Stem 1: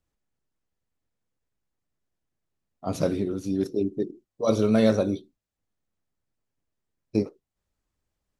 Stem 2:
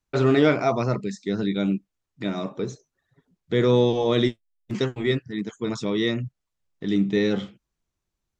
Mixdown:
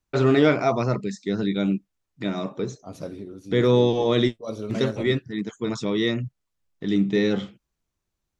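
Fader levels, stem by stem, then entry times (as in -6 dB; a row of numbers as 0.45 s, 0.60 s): -10.0 dB, +0.5 dB; 0.00 s, 0.00 s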